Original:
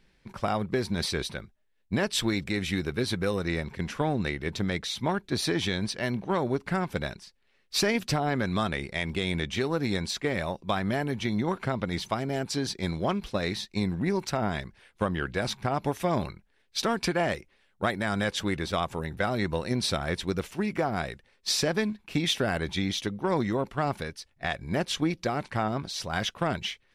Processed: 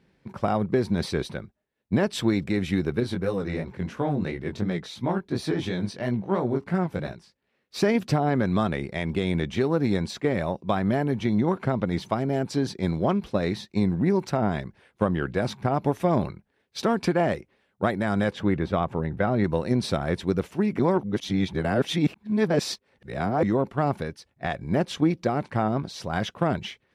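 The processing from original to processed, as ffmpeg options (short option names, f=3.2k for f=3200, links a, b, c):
-filter_complex "[0:a]asettb=1/sr,asplit=3[a][b][c];[a]atrim=end=3.004[d];[b]atrim=start=3:end=7.82,asetpts=PTS-STARTPTS,afade=t=in:d=0.004:c=qsin,afade=t=out:st=4.816:d=0.004:c=qsin,flanger=delay=16:depth=6.2:speed=2.9[e];[c]atrim=start=7.816[f];[d][e]acrossfade=d=0.004:c1=hsin:c2=qsin[g];[g][f]acrossfade=d=0.004:c1=qsin:c2=hsin,asettb=1/sr,asplit=3[h][i][j];[h]atrim=end=18.334[k];[i]atrim=start=18.33:end=19.44,asetpts=PTS-STARTPTS,afade=t=in:d=0.004:c=qsin,afade=t=out:st=1.106:d=0.004:c=qsin,bass=f=250:g=2,treble=f=4k:g=-12[l];[j]atrim=start=19.436[m];[k][l]acrossfade=d=0.004:c1=hsin:c2=qsin[n];[n][m]acrossfade=d=0.004:c1=qsin:c2=hsin,asplit=3[o][p][q];[o]atrim=end=20.792[r];[p]atrim=start=20.788:end=23.432,asetpts=PTS-STARTPTS,areverse[s];[q]atrim=start=23.428[t];[r][s]acrossfade=d=0.004:c1=hsin:c2=hsin[u];[u][t]acrossfade=d=0.004:c1=hsin:c2=hsin,highpass=91,tiltshelf=f=1.4k:g=6"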